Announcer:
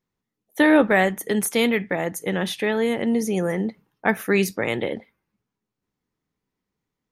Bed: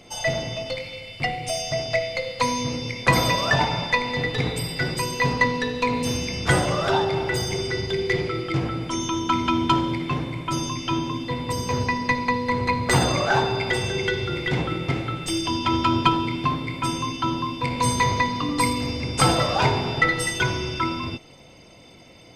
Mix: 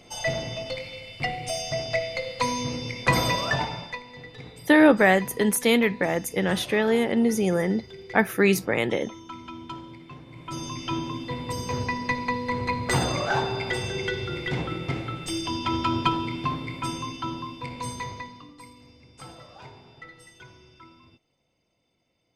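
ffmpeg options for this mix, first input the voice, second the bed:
-filter_complex "[0:a]adelay=4100,volume=1[s0];[1:a]volume=3.35,afade=t=out:st=3.34:d=0.69:silence=0.177828,afade=t=in:st=10.25:d=0.57:silence=0.211349,afade=t=out:st=16.73:d=1.84:silence=0.0891251[s1];[s0][s1]amix=inputs=2:normalize=0"

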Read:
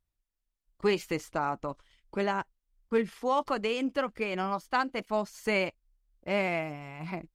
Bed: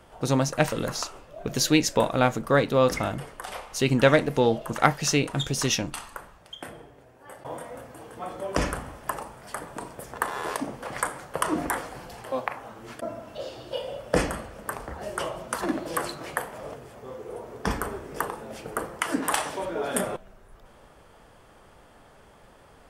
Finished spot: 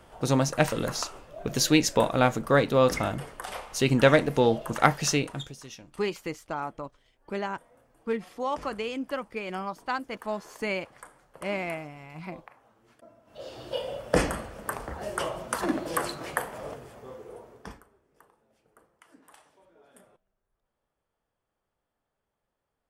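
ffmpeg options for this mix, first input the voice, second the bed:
-filter_complex "[0:a]adelay=5150,volume=0.75[s0];[1:a]volume=9.44,afade=t=out:st=5.03:d=0.54:silence=0.105925,afade=t=in:st=13.25:d=0.4:silence=0.1,afade=t=out:st=16.68:d=1.16:silence=0.0316228[s1];[s0][s1]amix=inputs=2:normalize=0"

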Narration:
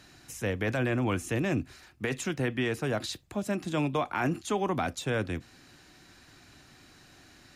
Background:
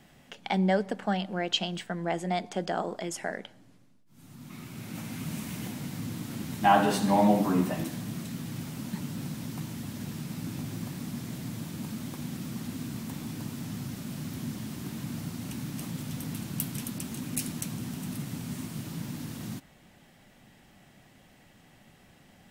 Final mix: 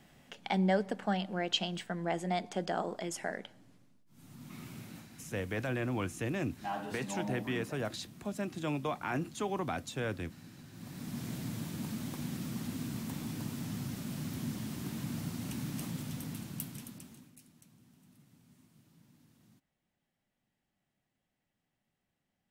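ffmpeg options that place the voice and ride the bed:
-filter_complex "[0:a]adelay=4900,volume=0.501[s0];[1:a]volume=3.76,afade=t=out:st=4.69:d=0.38:silence=0.211349,afade=t=in:st=10.72:d=0.54:silence=0.177828,afade=t=out:st=15.77:d=1.57:silence=0.0562341[s1];[s0][s1]amix=inputs=2:normalize=0"

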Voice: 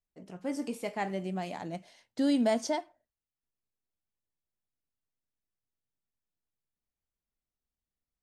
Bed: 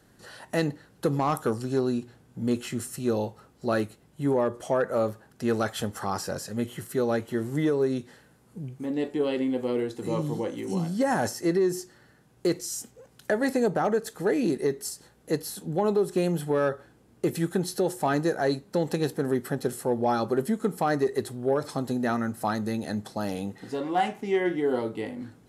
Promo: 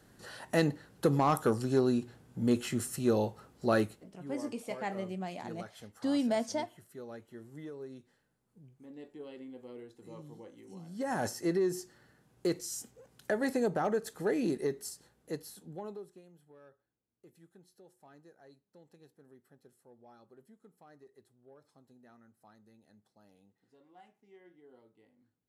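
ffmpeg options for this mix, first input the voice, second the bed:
-filter_complex "[0:a]adelay=3850,volume=0.668[s0];[1:a]volume=4.22,afade=t=out:st=3.88:d=0.32:silence=0.11885,afade=t=in:st=10.84:d=0.42:silence=0.199526,afade=t=out:st=14.52:d=1.7:silence=0.0446684[s1];[s0][s1]amix=inputs=2:normalize=0"

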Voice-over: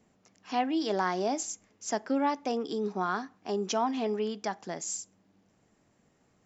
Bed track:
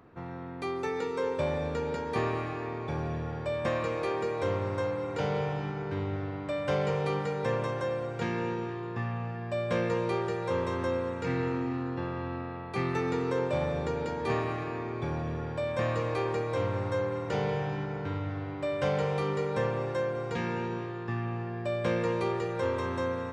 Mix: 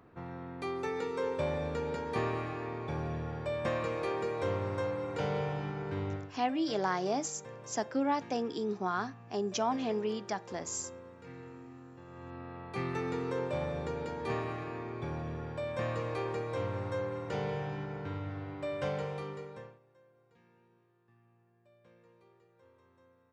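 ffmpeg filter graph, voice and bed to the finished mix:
-filter_complex "[0:a]adelay=5850,volume=0.75[s0];[1:a]volume=3.16,afade=t=out:st=6.12:d=0.2:silence=0.177828,afade=t=in:st=12.05:d=0.6:silence=0.223872,afade=t=out:st=18.77:d=1.02:silence=0.0354813[s1];[s0][s1]amix=inputs=2:normalize=0"

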